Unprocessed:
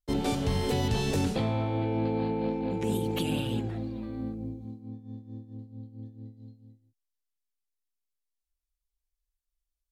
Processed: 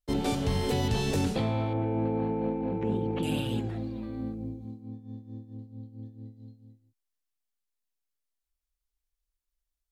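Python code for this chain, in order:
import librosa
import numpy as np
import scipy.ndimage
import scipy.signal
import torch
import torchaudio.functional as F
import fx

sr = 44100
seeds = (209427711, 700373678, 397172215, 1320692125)

y = fx.lowpass(x, sr, hz=1800.0, slope=12, at=(1.73, 3.23))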